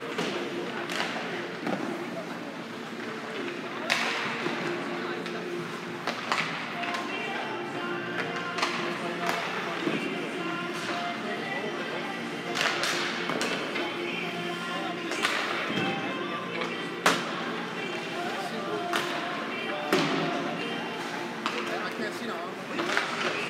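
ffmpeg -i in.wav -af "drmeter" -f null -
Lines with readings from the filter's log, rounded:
Channel 1: DR: 18.9
Overall DR: 18.9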